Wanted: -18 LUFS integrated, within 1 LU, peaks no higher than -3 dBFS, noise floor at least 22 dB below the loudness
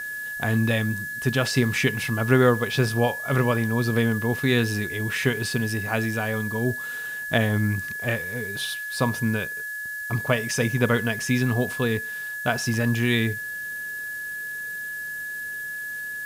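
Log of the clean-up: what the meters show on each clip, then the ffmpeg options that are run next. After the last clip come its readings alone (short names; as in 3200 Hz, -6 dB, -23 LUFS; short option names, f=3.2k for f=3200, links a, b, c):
steady tone 1700 Hz; tone level -30 dBFS; noise floor -33 dBFS; noise floor target -47 dBFS; loudness -25.0 LUFS; peak -7.0 dBFS; loudness target -18.0 LUFS
-> -af "bandreject=f=1.7k:w=30"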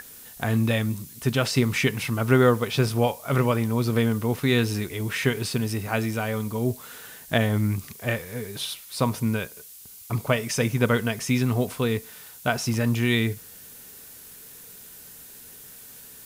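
steady tone none; noise floor -45 dBFS; noise floor target -47 dBFS
-> -af "afftdn=nr=6:nf=-45"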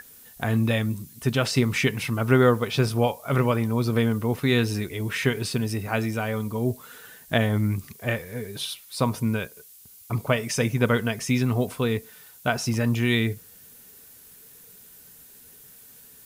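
noise floor -50 dBFS; loudness -25.0 LUFS; peak -7.0 dBFS; loudness target -18.0 LUFS
-> -af "volume=7dB,alimiter=limit=-3dB:level=0:latency=1"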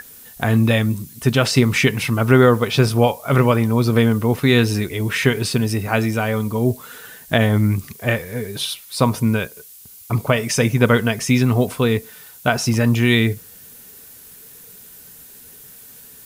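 loudness -18.0 LUFS; peak -3.0 dBFS; noise floor -43 dBFS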